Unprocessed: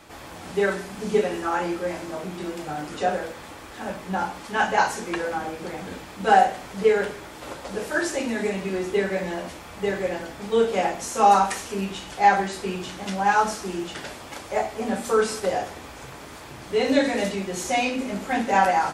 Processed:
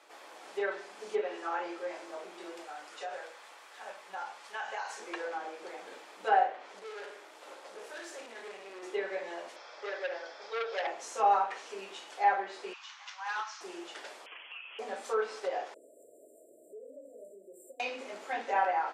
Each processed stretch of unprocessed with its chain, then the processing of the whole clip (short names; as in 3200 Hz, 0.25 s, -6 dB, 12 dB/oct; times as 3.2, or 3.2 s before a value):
2.66–5 bell 310 Hz -10.5 dB 1.6 oct + doubler 33 ms -13.5 dB + compressor 4:1, threshold -25 dBFS
6.79–8.83 tube stage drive 32 dB, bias 0.55 + flutter echo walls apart 10.1 m, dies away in 0.4 s
9.56–10.87 speaker cabinet 410–6100 Hz, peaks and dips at 560 Hz +6 dB, 1500 Hz +4 dB, 3300 Hz +4 dB, 5200 Hz +10 dB + notch 2900 Hz, Q 8.8 + core saturation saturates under 2500 Hz
12.73–13.61 elliptic band-pass 1000–6300 Hz + hard clip -22.5 dBFS
14.26–14.79 inverted band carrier 3300 Hz + compressor 8:1, threshold -33 dBFS
15.74–17.8 compressor 5:1, threshold -35 dBFS + brick-wall FIR band-stop 690–7200 Hz + careless resampling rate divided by 2×, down filtered, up hold
whole clip: HPF 390 Hz 24 dB/oct; treble ducked by the level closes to 2600 Hz, closed at -18 dBFS; high shelf 11000 Hz -8.5 dB; gain -9 dB